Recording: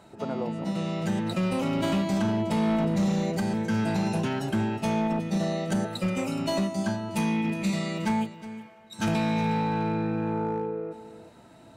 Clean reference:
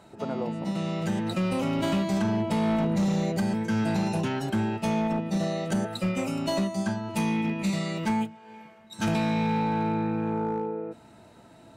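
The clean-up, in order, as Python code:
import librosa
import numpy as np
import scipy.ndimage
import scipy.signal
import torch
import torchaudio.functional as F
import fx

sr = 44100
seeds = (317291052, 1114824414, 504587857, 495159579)

y = fx.fix_echo_inverse(x, sr, delay_ms=365, level_db=-14.5)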